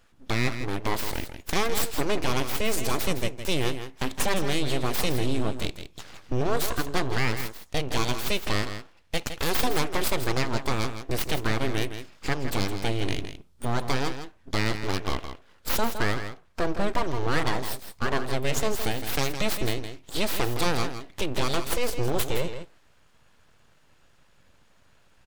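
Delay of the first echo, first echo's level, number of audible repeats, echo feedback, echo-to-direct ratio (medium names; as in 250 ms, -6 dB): 163 ms, -9.5 dB, 1, no regular repeats, -9.5 dB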